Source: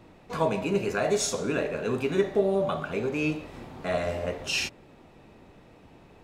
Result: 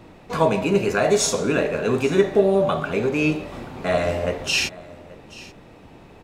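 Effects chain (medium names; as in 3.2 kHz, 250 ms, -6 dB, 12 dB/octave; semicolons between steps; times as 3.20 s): delay 832 ms -20.5 dB; trim +7 dB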